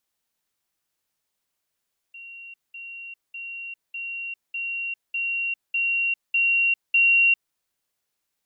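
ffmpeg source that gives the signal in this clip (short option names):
-f lavfi -i "aevalsrc='pow(10,(-38.5+3*floor(t/0.6))/20)*sin(2*PI*2750*t)*clip(min(mod(t,0.6),0.4-mod(t,0.6))/0.005,0,1)':d=5.4:s=44100"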